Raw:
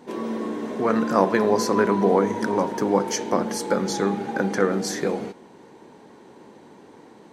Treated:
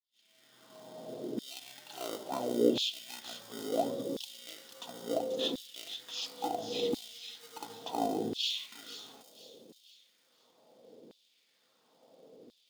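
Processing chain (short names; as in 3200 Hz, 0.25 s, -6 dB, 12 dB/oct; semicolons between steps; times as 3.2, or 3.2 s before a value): opening faded in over 0.58 s; notch 1000 Hz, Q 5.9; speed mistake 78 rpm record played at 45 rpm; in parallel at -9 dB: sample-rate reducer 1700 Hz, jitter 0%; on the sum: band shelf 1500 Hz -13 dB; on a send: thin delay 0.486 s, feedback 38%, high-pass 4000 Hz, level -5.5 dB; on the sum: LFO high-pass saw down 0.72 Hz 350–3800 Hz; gain -7 dB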